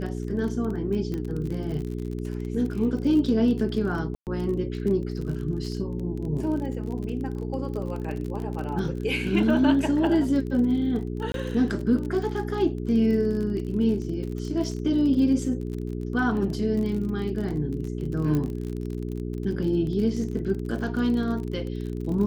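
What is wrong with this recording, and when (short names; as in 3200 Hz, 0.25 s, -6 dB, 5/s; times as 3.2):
crackle 38/s -32 dBFS
hum 60 Hz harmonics 7 -31 dBFS
1.14 pop -20 dBFS
4.15–4.27 gap 0.118 s
11.32–11.34 gap 22 ms
18.35 pop -16 dBFS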